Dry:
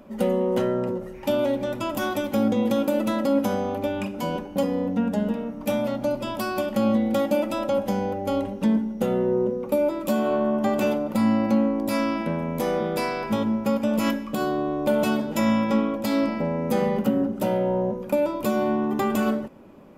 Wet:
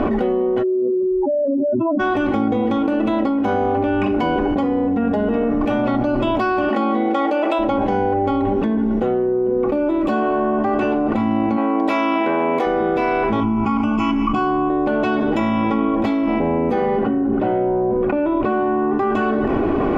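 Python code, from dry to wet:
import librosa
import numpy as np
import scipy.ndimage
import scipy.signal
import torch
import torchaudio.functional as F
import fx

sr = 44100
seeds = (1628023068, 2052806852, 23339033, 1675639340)

y = fx.spec_expand(x, sr, power=4.0, at=(0.62, 1.99), fade=0.02)
y = fx.highpass(y, sr, hz=fx.line((6.68, 210.0), (7.58, 430.0)), slope=24, at=(6.68, 7.58), fade=0.02)
y = fx.bessel_highpass(y, sr, hz=510.0, order=2, at=(11.56, 12.65), fade=0.02)
y = fx.fixed_phaser(y, sr, hz=2600.0, stages=8, at=(13.4, 14.7))
y = fx.lowpass(y, sr, hz=2900.0, slope=12, at=(17.03, 18.94))
y = scipy.signal.sosfilt(scipy.signal.butter(2, 2100.0, 'lowpass', fs=sr, output='sos'), y)
y = y + 0.67 * np.pad(y, (int(2.7 * sr / 1000.0), 0))[:len(y)]
y = fx.env_flatten(y, sr, amount_pct=100)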